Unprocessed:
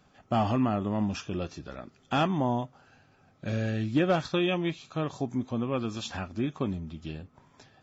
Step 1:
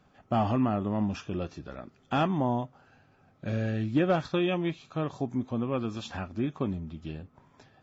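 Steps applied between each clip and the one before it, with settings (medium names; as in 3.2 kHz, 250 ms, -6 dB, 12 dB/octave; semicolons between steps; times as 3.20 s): treble shelf 3.6 kHz -8.5 dB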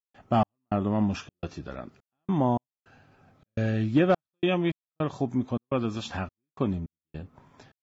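trance gate ".xx..xxxx.xxxx." 105 bpm -60 dB; trim +3.5 dB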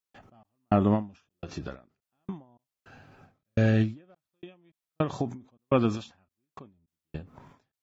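endings held to a fixed fall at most 170 dB/s; trim +4.5 dB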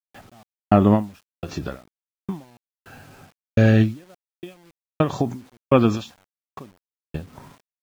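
word length cut 10-bit, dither none; trim +7.5 dB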